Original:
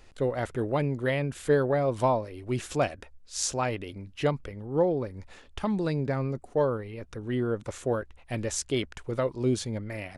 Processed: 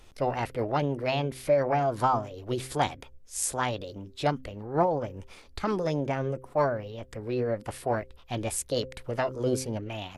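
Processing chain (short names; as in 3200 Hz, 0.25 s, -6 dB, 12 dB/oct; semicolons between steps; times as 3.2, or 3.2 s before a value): formant shift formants +5 st; de-hum 130.2 Hz, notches 4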